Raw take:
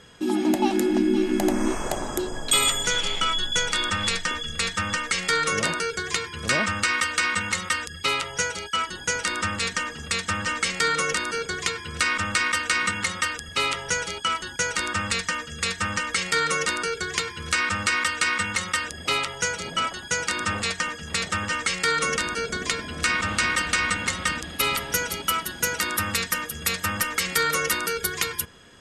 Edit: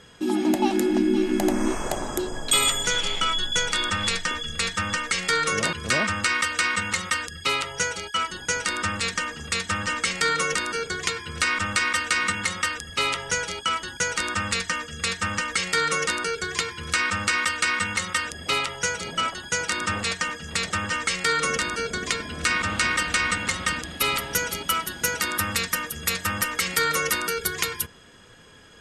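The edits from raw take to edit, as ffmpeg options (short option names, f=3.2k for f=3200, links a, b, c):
-filter_complex "[0:a]asplit=2[a][b];[a]atrim=end=5.732[c];[b]atrim=start=6.318[d];[c][d]acrossfade=d=0.004:c1=hsin:c2=hsin"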